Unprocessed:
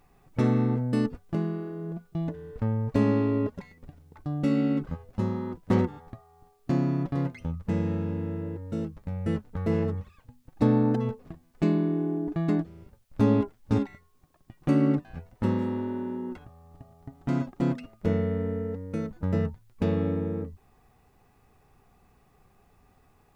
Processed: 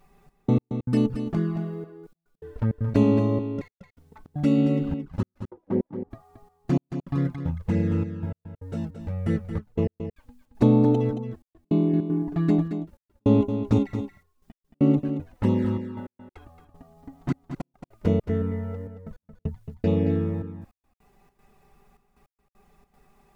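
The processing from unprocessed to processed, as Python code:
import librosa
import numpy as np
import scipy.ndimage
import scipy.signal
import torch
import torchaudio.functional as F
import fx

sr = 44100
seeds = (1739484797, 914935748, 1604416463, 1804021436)

y = fx.bandpass_q(x, sr, hz=fx.line((5.44, 690.0), (6.1, 180.0)), q=1.4, at=(5.44, 6.1), fade=0.02)
y = fx.env_flanger(y, sr, rest_ms=5.3, full_db=-21.0)
y = fx.step_gate(y, sr, bpm=155, pattern='xxx..x...xxx.xxx', floor_db=-60.0, edge_ms=4.5)
y = y + 10.0 ** (-9.0 / 20.0) * np.pad(y, (int(224 * sr / 1000.0), 0))[:len(y)]
y = y * 10.0 ** (4.5 / 20.0)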